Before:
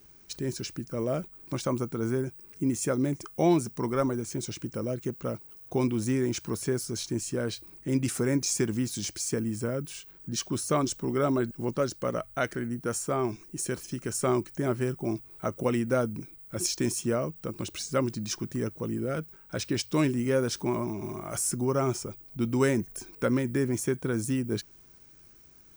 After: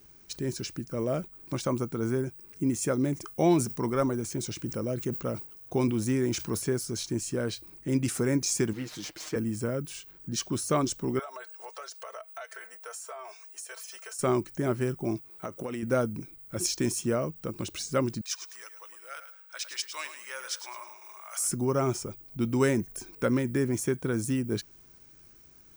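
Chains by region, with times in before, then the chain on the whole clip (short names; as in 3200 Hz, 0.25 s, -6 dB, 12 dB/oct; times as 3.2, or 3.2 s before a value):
3.14–6.62 bell 14000 Hz +7.5 dB 0.27 oct + sustainer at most 110 dB/s
8.73–9.36 median filter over 5 samples + tone controls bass -11 dB, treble -5 dB + comb 6.4 ms, depth 70%
11.19–14.19 steep high-pass 560 Hz + comb 4.5 ms, depth 85% + compressor, threshold -38 dBFS
15.18–15.83 low shelf 120 Hz -11.5 dB + compressor 10:1, threshold -30 dBFS
18.21–21.48 Bessel high-pass 1300 Hz, order 4 + feedback echo 0.106 s, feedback 28%, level -10.5 dB
whole clip: dry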